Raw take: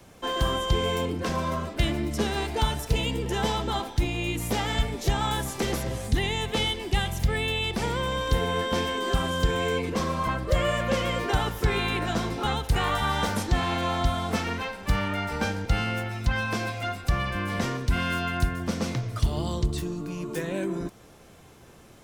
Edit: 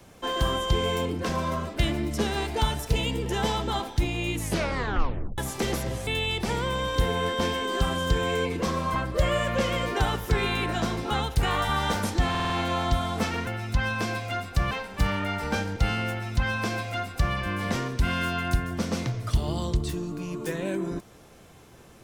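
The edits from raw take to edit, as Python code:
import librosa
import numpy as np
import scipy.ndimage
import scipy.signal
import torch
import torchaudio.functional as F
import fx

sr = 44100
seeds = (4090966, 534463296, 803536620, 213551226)

y = fx.edit(x, sr, fx.tape_stop(start_s=4.36, length_s=1.02),
    fx.cut(start_s=6.07, length_s=1.33),
    fx.stutter(start_s=13.63, slice_s=0.05, count=5),
    fx.duplicate(start_s=15.99, length_s=1.24, to_s=14.6), tone=tone)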